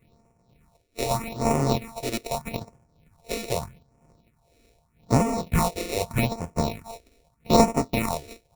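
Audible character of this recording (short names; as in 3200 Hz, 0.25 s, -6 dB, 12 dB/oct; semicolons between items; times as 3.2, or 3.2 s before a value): a buzz of ramps at a fixed pitch in blocks of 64 samples; tremolo triangle 2 Hz, depth 70%; aliases and images of a low sample rate 1600 Hz, jitter 0%; phasing stages 4, 0.81 Hz, lowest notch 150–3800 Hz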